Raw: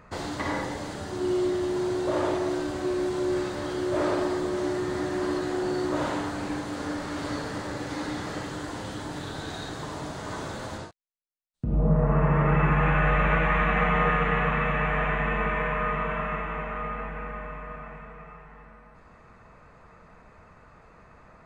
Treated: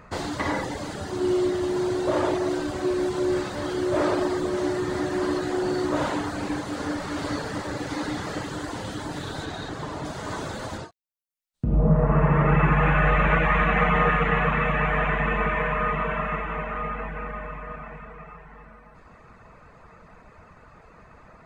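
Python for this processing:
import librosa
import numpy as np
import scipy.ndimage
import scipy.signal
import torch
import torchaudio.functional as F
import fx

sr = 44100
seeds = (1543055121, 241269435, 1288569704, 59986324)

y = fx.dereverb_blind(x, sr, rt60_s=0.54)
y = fx.high_shelf(y, sr, hz=5400.0, db=-8.5, at=(9.45, 10.05))
y = y * 10.0 ** (4.0 / 20.0)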